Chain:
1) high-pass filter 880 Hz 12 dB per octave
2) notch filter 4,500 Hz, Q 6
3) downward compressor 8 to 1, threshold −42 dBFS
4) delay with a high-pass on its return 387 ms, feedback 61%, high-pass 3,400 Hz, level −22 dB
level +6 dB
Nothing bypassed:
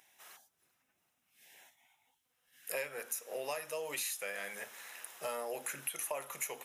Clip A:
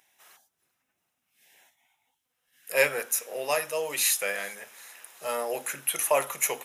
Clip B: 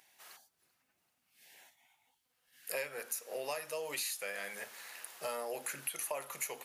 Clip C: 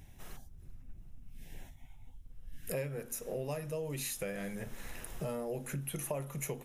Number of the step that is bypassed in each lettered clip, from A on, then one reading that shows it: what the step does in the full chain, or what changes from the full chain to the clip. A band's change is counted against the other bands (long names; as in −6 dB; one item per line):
3, change in crest factor +4.0 dB
2, 4 kHz band +2.0 dB
1, 125 Hz band +26.0 dB